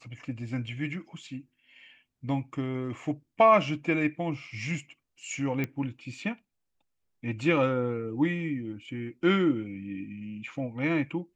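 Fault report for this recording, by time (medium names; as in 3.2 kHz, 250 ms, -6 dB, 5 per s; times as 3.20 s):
5.64 s: pop -18 dBFS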